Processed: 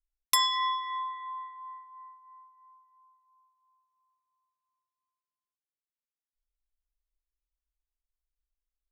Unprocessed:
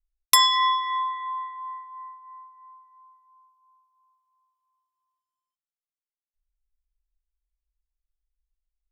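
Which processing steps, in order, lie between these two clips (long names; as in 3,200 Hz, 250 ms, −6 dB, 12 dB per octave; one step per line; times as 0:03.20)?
one half of a high-frequency compander decoder only
level −7.5 dB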